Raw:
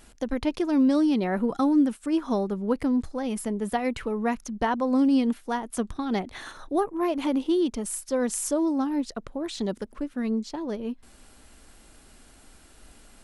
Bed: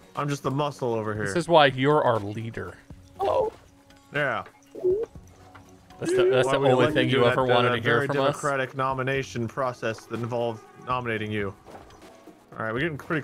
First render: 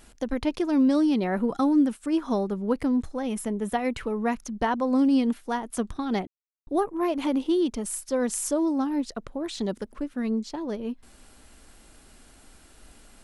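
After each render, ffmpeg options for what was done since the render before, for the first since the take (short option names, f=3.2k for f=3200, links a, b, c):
-filter_complex "[0:a]asettb=1/sr,asplit=3[a][b][c];[a]atrim=end=2.944[d];[b]atrim=start=2.94:end=3.92,asetpts=PTS-STARTPTS,afade=t=in:d=0.004:c=qsin,afade=t=out:st=0.976:d=0.004:c=qsin,bandreject=f=4.7k:w=7.1[e];[c]atrim=start=3.916[f];[d][e]acrossfade=d=0.004:c1=hsin:c2=qsin[g];[g][f]acrossfade=d=0.004:c1=qsin:c2=hsin,asplit=3[h][i][j];[h]atrim=end=6.27,asetpts=PTS-STARTPTS,afade=t=out:st=6.266:d=0.004:c=hsin[k];[i]atrim=start=6.27:end=6.67,asetpts=PTS-STARTPTS,volume=0[l];[j]atrim=start=6.67,asetpts=PTS-STARTPTS,afade=t=in:d=0.004:c=hsin[m];[k][l][m]concat=n=3:v=0:a=1"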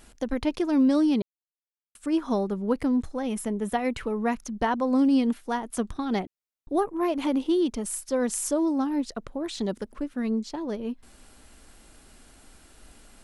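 -filter_complex "[0:a]asplit=3[a][b][c];[a]atrim=end=1.22,asetpts=PTS-STARTPTS,afade=t=out:st=1.216:d=0.004:c=hsin[d];[b]atrim=start=1.22:end=1.95,asetpts=PTS-STARTPTS,volume=0[e];[c]atrim=start=1.95,asetpts=PTS-STARTPTS,afade=t=in:d=0.004:c=hsin[f];[d][e][f]concat=n=3:v=0:a=1"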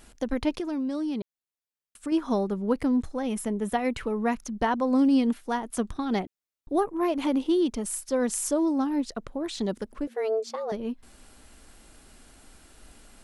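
-filter_complex "[0:a]asettb=1/sr,asplit=3[a][b][c];[a]atrim=end=0.544[d];[b]atrim=start=0.54:end=2.12,asetpts=PTS-STARTPTS,afade=t=in:d=0.004:c=qsin,afade=t=out:st=1.576:d=0.004:c=qsin,acompressor=threshold=-27dB:ratio=6:attack=3.2:release=140:knee=1:detection=peak[e];[c]atrim=start=2.116[f];[d][e]acrossfade=d=0.004:c1=hsin:c2=qsin[g];[g][f]acrossfade=d=0.004:c1=qsin:c2=hsin,asettb=1/sr,asplit=3[h][i][j];[h]atrim=end=10.074[k];[i]atrim=start=10.07:end=10.72,asetpts=PTS-STARTPTS,afade=t=in:d=0.004:c=qsin,afade=t=out:st=0.646:d=0.004:c=qsin,afreqshift=220[l];[j]atrim=start=10.716[m];[k][l]acrossfade=d=0.004:c1=hsin:c2=qsin[n];[n][m]acrossfade=d=0.004:c1=qsin:c2=hsin"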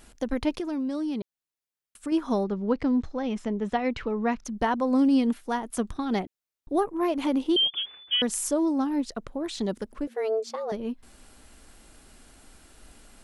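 -filter_complex "[0:a]asettb=1/sr,asplit=3[a][b][c];[a]atrim=end=2.444[d];[b]atrim=start=2.44:end=4.45,asetpts=PTS-STARTPTS,afade=t=in:d=0.004:c=qsin,afade=t=out:st=2.006:d=0.004:c=qsin,lowpass=f=5.8k:w=0.5412,lowpass=f=5.8k:w=1.3066[e];[c]atrim=start=4.446[f];[d][e]acrossfade=d=0.004:c1=hsin:c2=qsin[g];[g][f]acrossfade=d=0.004:c1=qsin:c2=hsin,asettb=1/sr,asplit=3[h][i][j];[h]atrim=end=7.564[k];[i]atrim=start=7.56:end=8.22,asetpts=PTS-STARTPTS,afade=t=in:d=0.004:c=qsin,afade=t=out:st=0.656:d=0.004:c=qsin,lowpass=f=3k:t=q:w=0.5098,lowpass=f=3k:t=q:w=0.6013,lowpass=f=3k:t=q:w=0.9,lowpass=f=3k:t=q:w=2.563,afreqshift=-3500[l];[j]atrim=start=8.216[m];[k][l]acrossfade=d=0.004:c1=hsin:c2=qsin[n];[n][m]acrossfade=d=0.004:c1=qsin:c2=hsin"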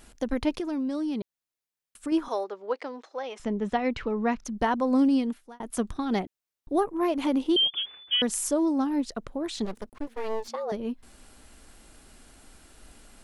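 -filter_complex "[0:a]asettb=1/sr,asplit=3[a][b][c];[a]atrim=end=2.284[d];[b]atrim=start=2.28:end=3.4,asetpts=PTS-STARTPTS,afade=t=in:d=0.004:c=qsin,afade=t=out:st=1.116:d=0.004:c=qsin,highpass=f=450:w=0.5412,highpass=f=450:w=1.3066[e];[c]atrim=start=3.396[f];[d][e]acrossfade=d=0.004:c1=hsin:c2=qsin[g];[g][f]acrossfade=d=0.004:c1=qsin:c2=hsin,asplit=3[h][i][j];[h]afade=t=out:st=9.64:d=0.02[k];[i]aeval=exprs='max(val(0),0)':c=same,afade=t=in:st=9.64:d=0.02,afade=t=out:st=10.47:d=0.02[l];[j]afade=t=in:st=10.47:d=0.02[m];[k][l][m]amix=inputs=3:normalize=0,asplit=2[n][o];[n]atrim=end=5.6,asetpts=PTS-STARTPTS,afade=t=out:st=5.03:d=0.57[p];[o]atrim=start=5.6,asetpts=PTS-STARTPTS,afade=t=in:d=0.004:c=hsin[q];[p][q]concat=n=2:v=0:a=1"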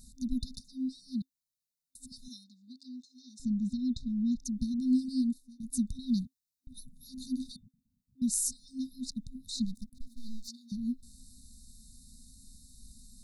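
-af "afftfilt=real='re*(1-between(b*sr/4096,260,3600))':imag='im*(1-between(b*sr/4096,260,3600))':win_size=4096:overlap=0.75"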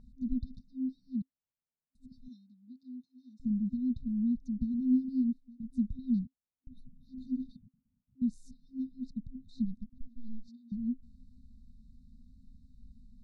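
-af "lowpass=1.2k"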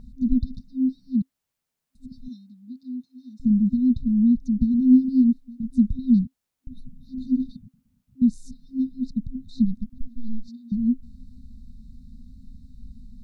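-af "volume=12dB"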